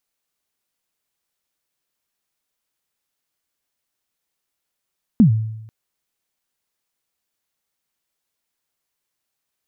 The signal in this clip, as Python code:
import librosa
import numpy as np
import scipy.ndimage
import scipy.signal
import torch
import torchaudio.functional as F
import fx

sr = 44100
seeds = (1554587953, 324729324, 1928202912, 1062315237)

y = fx.drum_kick(sr, seeds[0], length_s=0.49, level_db=-5.5, start_hz=250.0, end_hz=110.0, sweep_ms=105.0, decay_s=0.88, click=False)